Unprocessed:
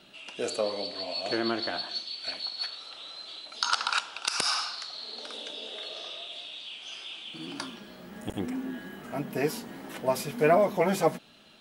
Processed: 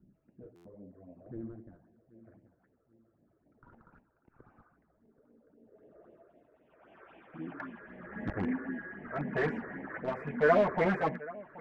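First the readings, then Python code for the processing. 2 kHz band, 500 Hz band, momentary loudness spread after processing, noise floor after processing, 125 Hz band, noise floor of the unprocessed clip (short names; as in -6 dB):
-3.0 dB, -4.5 dB, 20 LU, -73 dBFS, -1.5 dB, -50 dBFS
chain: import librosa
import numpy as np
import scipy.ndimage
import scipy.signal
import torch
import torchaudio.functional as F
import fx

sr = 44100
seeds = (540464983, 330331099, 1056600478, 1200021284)

p1 = fx.high_shelf_res(x, sr, hz=2700.0, db=-14.0, q=3.0)
p2 = p1 + fx.echo_feedback(p1, sr, ms=777, feedback_pct=53, wet_db=-19.5, dry=0)
p3 = fx.phaser_stages(p2, sr, stages=6, low_hz=200.0, high_hz=1400.0, hz=3.8, feedback_pct=0)
p4 = (np.mod(10.0 ** (26.5 / 20.0) * p3 + 1.0, 2.0) - 1.0) / 10.0 ** (26.5 / 20.0)
p5 = p3 + (p4 * 10.0 ** (-5.5 / 20.0))
p6 = p5 * (1.0 - 0.47 / 2.0 + 0.47 / 2.0 * np.cos(2.0 * np.pi * 0.84 * (np.arange(len(p5)) / sr)))
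p7 = fx.filter_sweep_lowpass(p6, sr, from_hz=180.0, to_hz=1900.0, start_s=5.64, end_s=7.79, q=0.79)
y = fx.buffer_glitch(p7, sr, at_s=(0.55,), block=512, repeats=8)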